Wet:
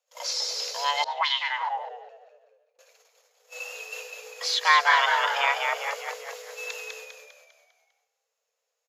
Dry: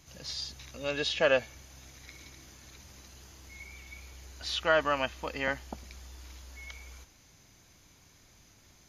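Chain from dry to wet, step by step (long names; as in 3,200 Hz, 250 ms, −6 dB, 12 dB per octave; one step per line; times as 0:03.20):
delay that plays each chunk backwards 211 ms, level −11 dB
low-shelf EQ 100 Hz −7 dB
noise gate −49 dBFS, range −34 dB
on a send: echo with shifted repeats 200 ms, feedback 46%, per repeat −72 Hz, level −4 dB
on the sum: frequency shifter +430 Hz
0:01.04–0:02.79: envelope filter 280–3,400 Hz, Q 3, up, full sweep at −20.5 dBFS
in parallel at 0 dB: downward compressor, threshold −41 dBFS, peak gain reduction 19 dB
on the sum: level +5 dB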